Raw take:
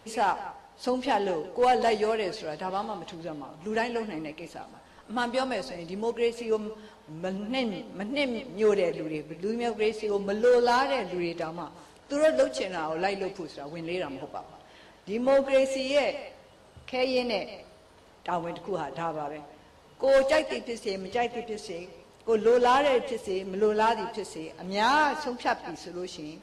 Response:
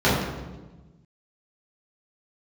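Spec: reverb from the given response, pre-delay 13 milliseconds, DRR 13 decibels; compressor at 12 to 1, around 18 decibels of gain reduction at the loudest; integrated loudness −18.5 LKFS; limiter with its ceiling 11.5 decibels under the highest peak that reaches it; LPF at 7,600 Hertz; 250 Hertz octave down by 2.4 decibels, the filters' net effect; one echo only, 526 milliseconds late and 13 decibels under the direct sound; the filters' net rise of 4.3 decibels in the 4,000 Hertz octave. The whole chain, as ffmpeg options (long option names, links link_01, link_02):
-filter_complex "[0:a]lowpass=7600,equalizer=frequency=250:width_type=o:gain=-3,equalizer=frequency=4000:width_type=o:gain=6,acompressor=threshold=-37dB:ratio=12,alimiter=level_in=9dB:limit=-24dB:level=0:latency=1,volume=-9dB,aecho=1:1:526:0.224,asplit=2[link_01][link_02];[1:a]atrim=start_sample=2205,adelay=13[link_03];[link_02][link_03]afir=irnorm=-1:irlink=0,volume=-34dB[link_04];[link_01][link_04]amix=inputs=2:normalize=0,volume=24dB"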